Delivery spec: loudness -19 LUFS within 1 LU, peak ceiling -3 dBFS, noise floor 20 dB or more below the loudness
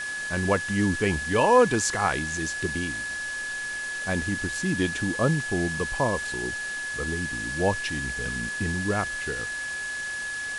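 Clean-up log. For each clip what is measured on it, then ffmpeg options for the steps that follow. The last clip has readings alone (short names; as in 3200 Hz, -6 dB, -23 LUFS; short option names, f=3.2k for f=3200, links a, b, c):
steady tone 1700 Hz; tone level -30 dBFS; noise floor -33 dBFS; noise floor target -47 dBFS; loudness -26.5 LUFS; peak -8.0 dBFS; loudness target -19.0 LUFS
-> -af "bandreject=f=1.7k:w=30"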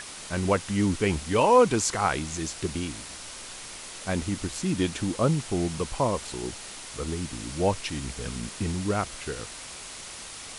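steady tone none; noise floor -41 dBFS; noise floor target -48 dBFS
-> -af "afftdn=nr=7:nf=-41"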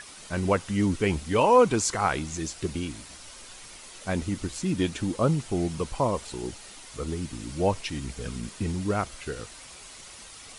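noise floor -46 dBFS; noise floor target -48 dBFS
-> -af "afftdn=nr=6:nf=-46"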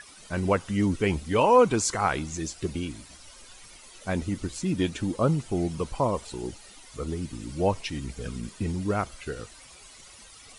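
noise floor -50 dBFS; loudness -27.5 LUFS; peak -8.5 dBFS; loudness target -19.0 LUFS
-> -af "volume=8.5dB,alimiter=limit=-3dB:level=0:latency=1"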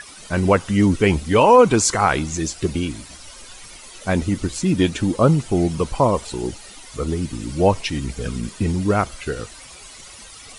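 loudness -19.5 LUFS; peak -3.0 dBFS; noise floor -41 dBFS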